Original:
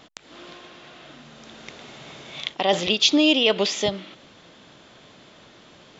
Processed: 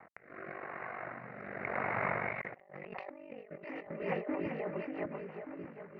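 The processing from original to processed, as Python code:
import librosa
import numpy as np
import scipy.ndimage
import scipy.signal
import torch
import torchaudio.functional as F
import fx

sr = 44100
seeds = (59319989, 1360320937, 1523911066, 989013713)

y = fx.law_mismatch(x, sr, coded='A')
y = fx.doppler_pass(y, sr, speed_mps=9, closest_m=7.4, pass_at_s=2.2)
y = scipy.signal.sosfilt(scipy.signal.butter(2, 160.0, 'highpass', fs=sr, output='sos'), y)
y = y * np.sin(2.0 * np.pi * 24.0 * np.arange(len(y)) / sr)
y = scipy.signal.sosfilt(scipy.signal.ellip(4, 1.0, 40, 2100.0, 'lowpass', fs=sr, output='sos'), y)
y = fx.peak_eq(y, sr, hz=280.0, db=-12.5, octaves=1.2)
y = fx.echo_split(y, sr, split_hz=360.0, low_ms=590, high_ms=389, feedback_pct=52, wet_db=-12)
y = fx.over_compress(y, sr, threshold_db=-54.0, ratio=-1.0)
y = fx.rotary_switch(y, sr, hz=0.9, then_hz=6.0, switch_at_s=3.47)
y = y * librosa.db_to_amplitude(12.5)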